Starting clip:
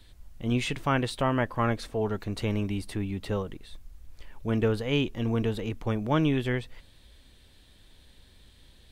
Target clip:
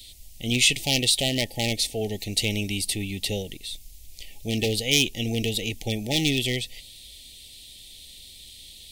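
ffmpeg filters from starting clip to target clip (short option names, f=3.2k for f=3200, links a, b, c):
-af "aeval=exprs='0.119*(abs(mod(val(0)/0.119+3,4)-2)-1)':c=same,afftfilt=real='re*(1-between(b*sr/4096,860,1800))':imag='im*(1-between(b*sr/4096,860,1800))':win_size=4096:overlap=0.75,aexciter=amount=5.6:drive=6.5:freq=2.4k"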